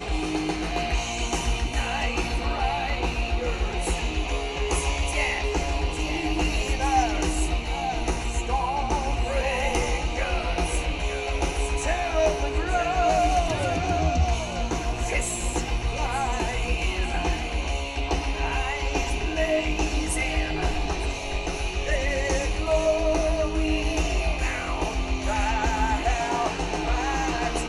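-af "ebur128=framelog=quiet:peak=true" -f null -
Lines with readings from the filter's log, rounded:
Integrated loudness:
  I:         -26.1 LUFS
  Threshold: -36.1 LUFS
Loudness range:
  LRA:         2.4 LU
  Threshold: -46.1 LUFS
  LRA low:   -27.1 LUFS
  LRA high:  -24.7 LUFS
True peak:
  Peak:       -9.3 dBFS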